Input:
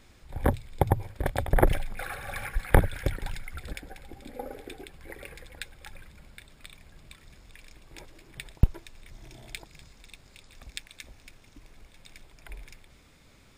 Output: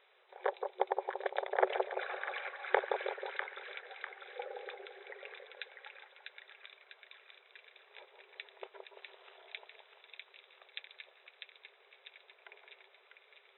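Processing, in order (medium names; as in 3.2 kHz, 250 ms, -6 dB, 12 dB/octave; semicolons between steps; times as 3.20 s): 8.95–9.37 s: integer overflow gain 47 dB; FFT band-pass 370–4000 Hz; two-band feedback delay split 1.2 kHz, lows 170 ms, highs 648 ms, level -4.5 dB; trim -5 dB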